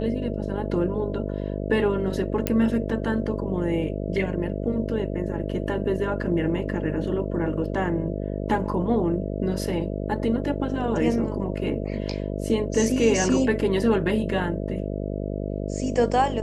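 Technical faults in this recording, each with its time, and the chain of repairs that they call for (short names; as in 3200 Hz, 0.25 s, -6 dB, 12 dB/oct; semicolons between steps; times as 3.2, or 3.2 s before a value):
buzz 50 Hz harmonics 13 -29 dBFS
2.47 pop -8 dBFS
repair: de-click; de-hum 50 Hz, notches 13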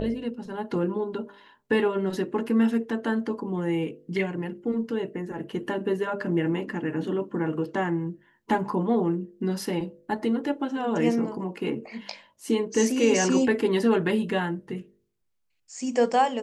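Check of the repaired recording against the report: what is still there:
none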